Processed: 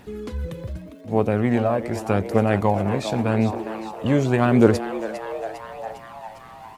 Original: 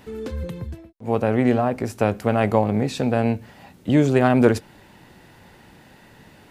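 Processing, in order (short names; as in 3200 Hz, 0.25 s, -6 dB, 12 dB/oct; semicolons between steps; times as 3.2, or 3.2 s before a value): speed mistake 25 fps video run at 24 fps; crackle 220/s -49 dBFS; on a send: frequency-shifting echo 0.403 s, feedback 63%, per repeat +110 Hz, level -11 dB; on the sum: phaser 0.85 Hz, delay 1.9 ms, feedback 32%; gain -1.5 dB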